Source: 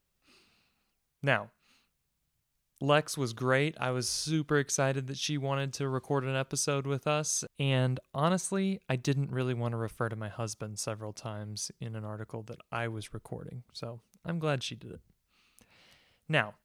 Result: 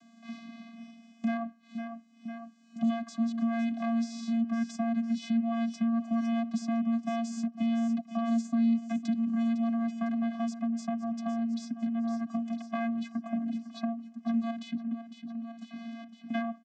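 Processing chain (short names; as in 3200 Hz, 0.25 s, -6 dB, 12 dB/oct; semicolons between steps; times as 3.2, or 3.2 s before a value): one diode to ground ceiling -24.5 dBFS; limiter -25.5 dBFS, peak gain reduction 11 dB; 14.5–16.34 level quantiser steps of 22 dB; vocoder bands 16, square 230 Hz; feedback echo 0.504 s, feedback 46%, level -16 dB; three-band squash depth 70%; gain +7 dB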